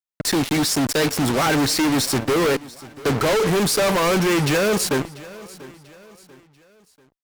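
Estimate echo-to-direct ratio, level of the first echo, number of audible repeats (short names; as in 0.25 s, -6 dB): -19.0 dB, -19.5 dB, 2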